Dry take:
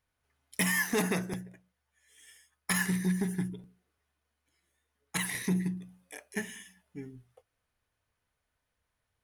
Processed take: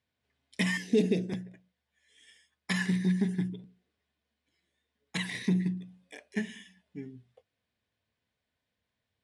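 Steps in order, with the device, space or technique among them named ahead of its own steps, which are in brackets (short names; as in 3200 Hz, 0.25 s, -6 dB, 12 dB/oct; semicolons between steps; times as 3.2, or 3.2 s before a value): 0.77–1.29 EQ curve 200 Hz 0 dB, 430 Hz +6 dB, 1200 Hz -26 dB, 2500 Hz -4 dB; car door speaker (speaker cabinet 85–7400 Hz, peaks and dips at 220 Hz +7 dB, 870 Hz -5 dB, 1300 Hz -9 dB, 3600 Hz +4 dB, 6300 Hz -7 dB)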